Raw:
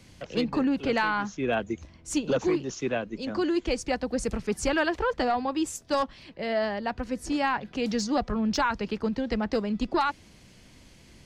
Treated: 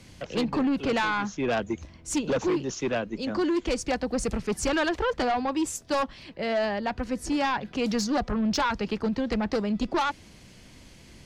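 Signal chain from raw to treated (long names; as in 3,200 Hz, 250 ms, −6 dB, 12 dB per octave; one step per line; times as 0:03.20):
sine wavefolder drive 4 dB, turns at −16 dBFS
level −5 dB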